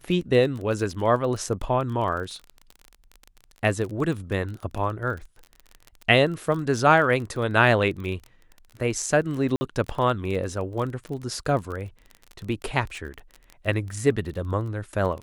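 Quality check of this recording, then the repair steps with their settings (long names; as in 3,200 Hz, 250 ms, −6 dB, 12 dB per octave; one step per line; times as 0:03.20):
surface crackle 25 per second −31 dBFS
0:09.56–0:09.61: drop-out 50 ms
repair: click removal
repair the gap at 0:09.56, 50 ms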